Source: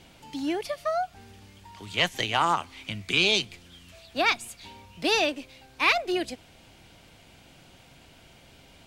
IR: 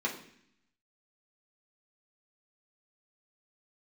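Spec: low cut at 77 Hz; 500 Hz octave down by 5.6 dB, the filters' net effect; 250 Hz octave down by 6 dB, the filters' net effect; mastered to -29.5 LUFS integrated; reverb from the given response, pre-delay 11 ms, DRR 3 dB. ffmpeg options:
-filter_complex "[0:a]highpass=77,equalizer=f=250:t=o:g=-5.5,equalizer=f=500:t=o:g=-6.5,asplit=2[a][b];[1:a]atrim=start_sample=2205,adelay=11[c];[b][c]afir=irnorm=-1:irlink=0,volume=-9dB[d];[a][d]amix=inputs=2:normalize=0,volume=-4dB"

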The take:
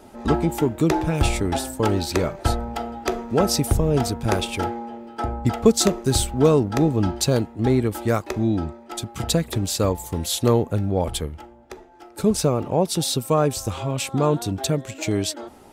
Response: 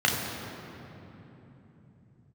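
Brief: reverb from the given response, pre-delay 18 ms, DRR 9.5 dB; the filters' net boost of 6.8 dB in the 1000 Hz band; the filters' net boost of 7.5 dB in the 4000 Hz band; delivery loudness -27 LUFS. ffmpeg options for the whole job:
-filter_complex "[0:a]equalizer=f=1k:t=o:g=8.5,equalizer=f=4k:t=o:g=8.5,asplit=2[a][b];[1:a]atrim=start_sample=2205,adelay=18[c];[b][c]afir=irnorm=-1:irlink=0,volume=-25dB[d];[a][d]amix=inputs=2:normalize=0,volume=-7.5dB"

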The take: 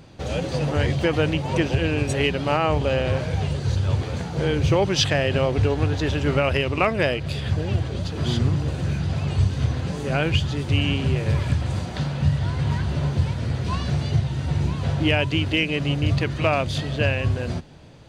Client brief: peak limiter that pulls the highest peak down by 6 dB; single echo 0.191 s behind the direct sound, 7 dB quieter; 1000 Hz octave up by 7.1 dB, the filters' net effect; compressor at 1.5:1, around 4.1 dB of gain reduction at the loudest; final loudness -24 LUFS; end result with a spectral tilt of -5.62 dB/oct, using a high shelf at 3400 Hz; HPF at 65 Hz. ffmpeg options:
-af "highpass=65,equalizer=f=1k:t=o:g=9,highshelf=f=3.4k:g=5,acompressor=threshold=-23dB:ratio=1.5,alimiter=limit=-12dB:level=0:latency=1,aecho=1:1:191:0.447"

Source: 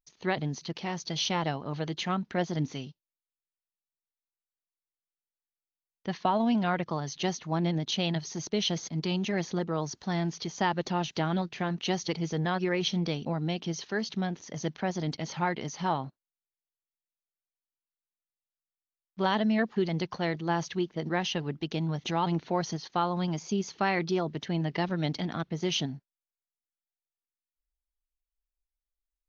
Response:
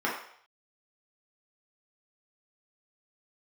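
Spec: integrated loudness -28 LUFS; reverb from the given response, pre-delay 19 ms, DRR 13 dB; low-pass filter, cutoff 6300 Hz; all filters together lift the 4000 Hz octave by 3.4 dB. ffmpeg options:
-filter_complex "[0:a]lowpass=6.3k,equalizer=f=4k:t=o:g=5,asplit=2[a][b];[1:a]atrim=start_sample=2205,adelay=19[c];[b][c]afir=irnorm=-1:irlink=0,volume=-24dB[d];[a][d]amix=inputs=2:normalize=0,volume=2dB"

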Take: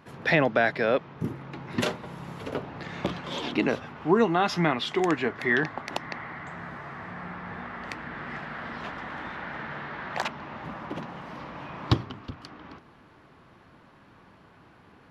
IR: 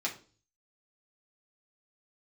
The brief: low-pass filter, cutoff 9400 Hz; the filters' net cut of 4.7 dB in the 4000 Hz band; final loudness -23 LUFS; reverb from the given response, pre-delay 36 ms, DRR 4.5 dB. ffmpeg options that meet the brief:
-filter_complex "[0:a]lowpass=9.4k,equalizer=f=4k:t=o:g=-6,asplit=2[a][b];[1:a]atrim=start_sample=2205,adelay=36[c];[b][c]afir=irnorm=-1:irlink=0,volume=-9dB[d];[a][d]amix=inputs=2:normalize=0,volume=6dB"

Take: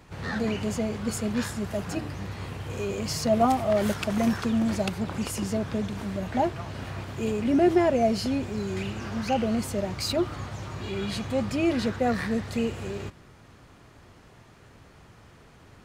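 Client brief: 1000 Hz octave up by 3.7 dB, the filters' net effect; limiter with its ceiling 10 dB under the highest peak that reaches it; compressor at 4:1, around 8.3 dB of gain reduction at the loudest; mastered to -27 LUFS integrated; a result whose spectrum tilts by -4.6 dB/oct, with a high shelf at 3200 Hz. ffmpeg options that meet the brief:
-af "equalizer=f=1k:t=o:g=5,highshelf=f=3.2k:g=6.5,acompressor=threshold=-25dB:ratio=4,volume=4.5dB,alimiter=limit=-17.5dB:level=0:latency=1"

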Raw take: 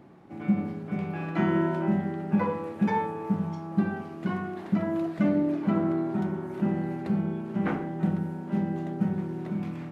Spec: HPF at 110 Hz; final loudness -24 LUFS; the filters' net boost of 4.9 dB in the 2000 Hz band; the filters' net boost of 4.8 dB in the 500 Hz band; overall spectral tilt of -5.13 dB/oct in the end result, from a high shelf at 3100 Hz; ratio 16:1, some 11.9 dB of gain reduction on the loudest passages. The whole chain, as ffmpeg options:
-af "highpass=110,equalizer=f=500:t=o:g=6.5,equalizer=f=2k:t=o:g=4,highshelf=f=3.1k:g=6,acompressor=threshold=-30dB:ratio=16,volume=11dB"

